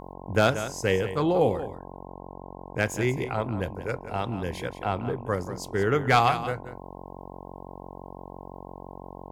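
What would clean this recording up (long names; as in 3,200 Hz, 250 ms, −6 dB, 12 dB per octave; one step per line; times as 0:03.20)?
clipped peaks rebuilt −10.5 dBFS
hum removal 45.9 Hz, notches 23
echo removal 181 ms −12 dB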